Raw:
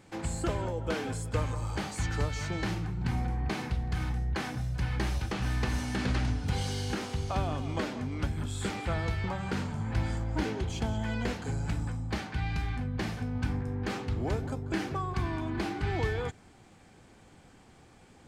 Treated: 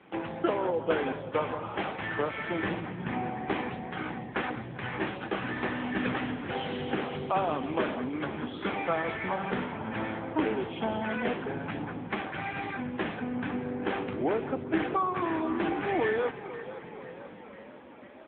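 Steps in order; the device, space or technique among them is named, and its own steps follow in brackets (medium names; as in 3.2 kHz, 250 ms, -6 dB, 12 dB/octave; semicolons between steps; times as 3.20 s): frequency-shifting echo 496 ms, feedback 62%, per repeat +38 Hz, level -14 dB; 6.78–7.50 s: dynamic bell 150 Hz, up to +4 dB, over -47 dBFS, Q 5.3; telephone (band-pass 280–3300 Hz; trim +8 dB; AMR-NB 6.7 kbps 8 kHz)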